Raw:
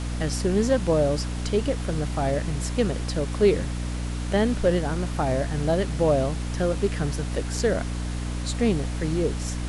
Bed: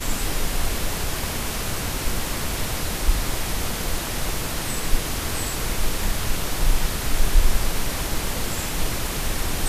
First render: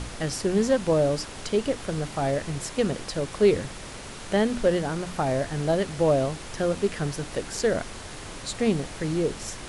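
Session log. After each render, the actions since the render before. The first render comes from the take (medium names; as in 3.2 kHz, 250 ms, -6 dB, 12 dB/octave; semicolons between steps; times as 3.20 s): hum notches 60/120/180/240/300 Hz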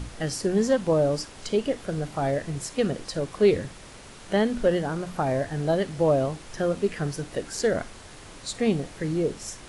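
noise print and reduce 6 dB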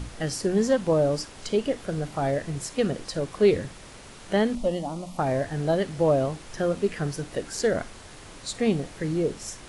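4.55–5.19 s: static phaser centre 420 Hz, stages 6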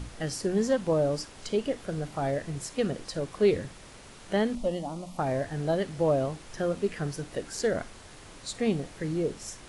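trim -3.5 dB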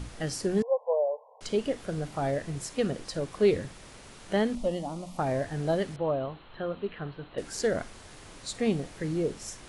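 0.62–1.41 s: brick-wall FIR band-pass 440–1100 Hz; 5.96–7.38 s: rippled Chebyshev low-pass 4.2 kHz, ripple 6 dB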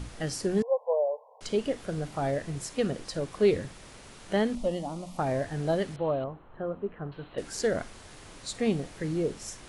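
6.24–7.12 s: low-pass 1.2 kHz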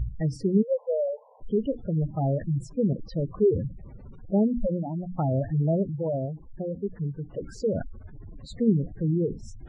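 spectral gate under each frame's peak -10 dB strong; tone controls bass +11 dB, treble -11 dB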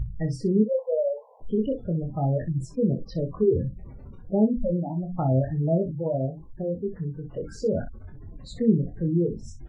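early reflections 23 ms -5 dB, 61 ms -12.5 dB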